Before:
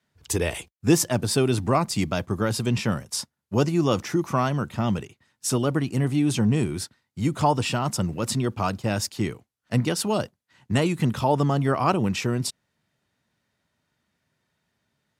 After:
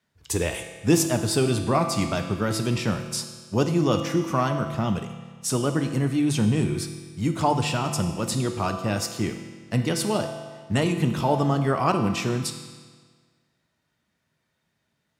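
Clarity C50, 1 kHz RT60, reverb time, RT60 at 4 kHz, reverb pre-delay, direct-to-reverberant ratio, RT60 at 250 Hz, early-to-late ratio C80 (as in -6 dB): 7.5 dB, 1.6 s, 1.6 s, 1.5 s, 6 ms, 5.0 dB, 1.6 s, 8.5 dB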